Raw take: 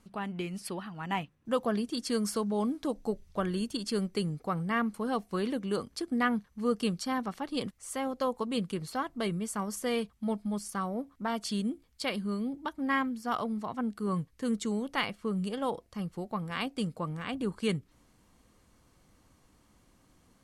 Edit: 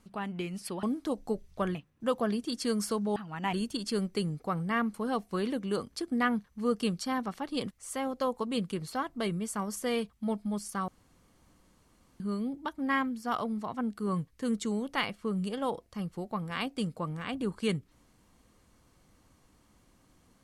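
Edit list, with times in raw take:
0.83–1.20 s: swap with 2.61–3.53 s
10.88–12.20 s: room tone

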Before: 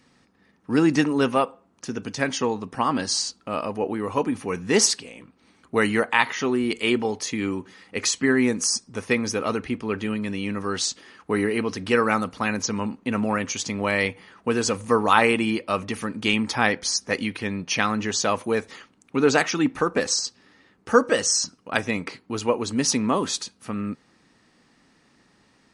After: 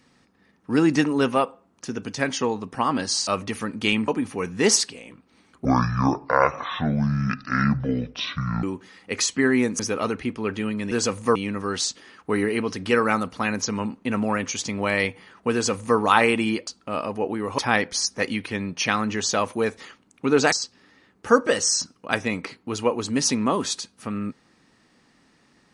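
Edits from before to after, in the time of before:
3.27–4.18 s: swap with 15.68–16.49 s
5.75–7.48 s: speed 58%
8.64–9.24 s: delete
14.54–14.98 s: copy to 10.36 s
19.43–20.15 s: delete

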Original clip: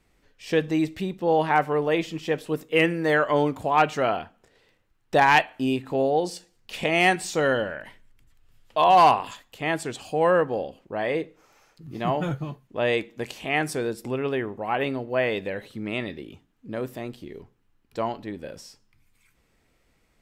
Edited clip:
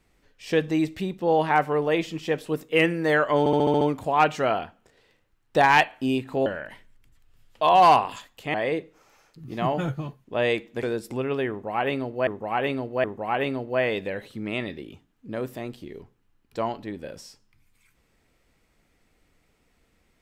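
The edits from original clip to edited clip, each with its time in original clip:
3.39 s: stutter 0.07 s, 7 plays
6.04–7.61 s: delete
9.69–10.97 s: delete
13.26–13.77 s: delete
14.44–15.21 s: loop, 3 plays

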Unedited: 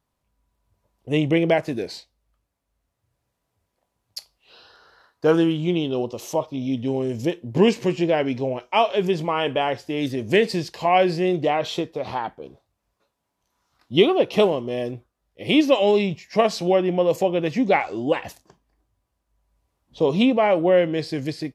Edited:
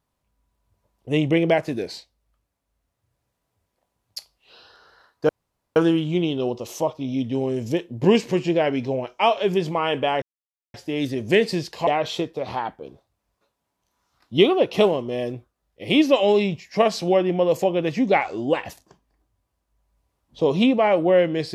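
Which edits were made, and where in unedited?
5.29 s: insert room tone 0.47 s
9.75 s: insert silence 0.52 s
10.88–11.46 s: delete

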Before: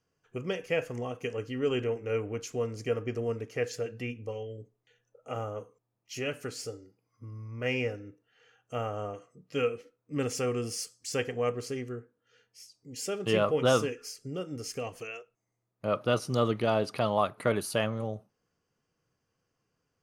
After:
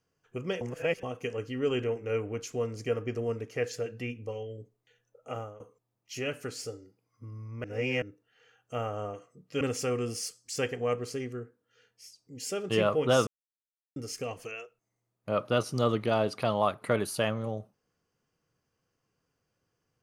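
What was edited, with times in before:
0.61–1.03 s: reverse
5.30–5.60 s: fade out, to -17.5 dB
7.64–8.02 s: reverse
9.61–10.17 s: delete
13.83–14.52 s: mute

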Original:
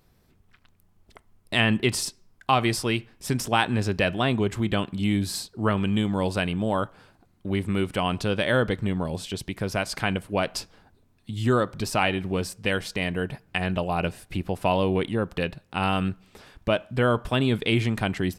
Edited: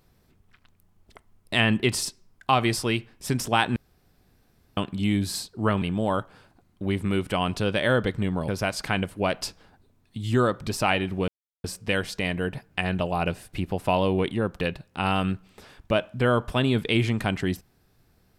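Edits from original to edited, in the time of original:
3.76–4.77 s: room tone
5.82–6.46 s: delete
9.12–9.61 s: delete
12.41 s: insert silence 0.36 s

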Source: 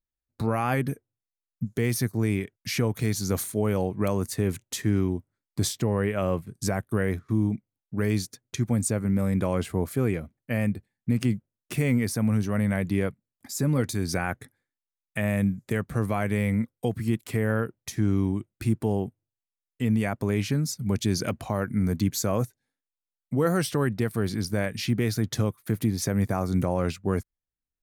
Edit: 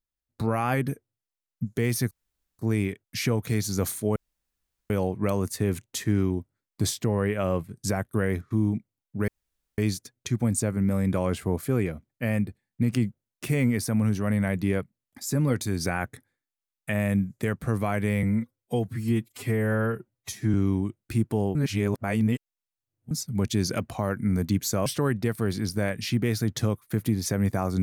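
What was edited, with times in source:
2.11 s: insert room tone 0.48 s
3.68 s: insert room tone 0.74 s
8.06 s: insert room tone 0.50 s
16.51–18.05 s: stretch 1.5×
19.06–20.62 s: reverse
22.37–23.62 s: delete

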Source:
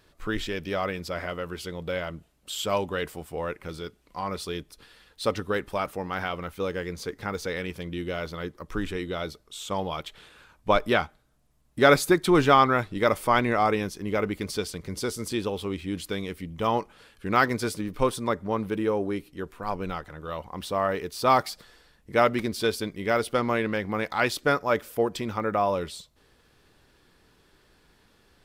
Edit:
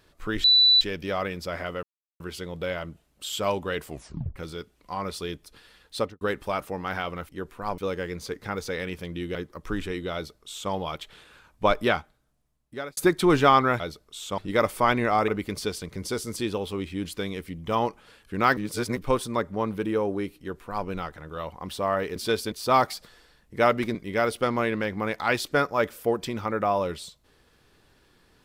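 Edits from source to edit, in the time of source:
0.44 s: add tone 3.97 kHz -14 dBFS 0.37 s
1.46 s: insert silence 0.37 s
3.14 s: tape stop 0.48 s
5.22–5.47 s: studio fade out
8.12–8.40 s: delete
9.19–9.77 s: copy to 12.85 s
10.92–12.02 s: fade out
13.75–14.20 s: delete
17.49–17.89 s: reverse
19.30–19.79 s: copy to 6.55 s
22.51–22.87 s: move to 21.08 s

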